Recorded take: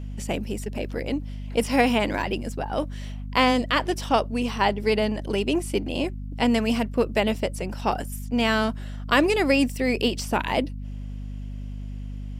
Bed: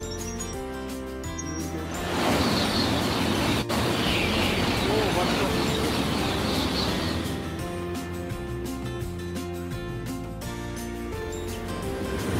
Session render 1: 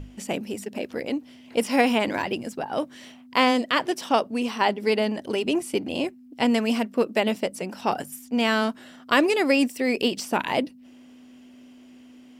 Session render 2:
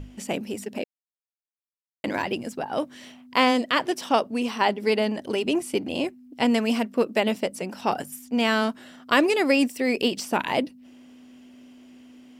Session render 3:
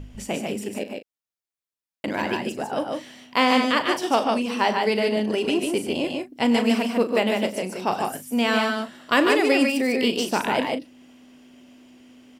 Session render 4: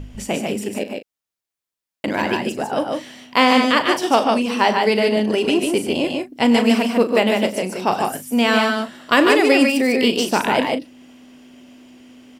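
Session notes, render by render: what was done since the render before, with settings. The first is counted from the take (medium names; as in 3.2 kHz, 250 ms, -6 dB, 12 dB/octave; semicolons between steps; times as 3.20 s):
hum notches 50/100/150/200 Hz
0.84–2.04 s: mute
doubling 38 ms -11.5 dB; multi-tap echo 97/130/149 ms -16/-12/-3.5 dB
trim +5 dB; peak limiter -2 dBFS, peak gain reduction 1.5 dB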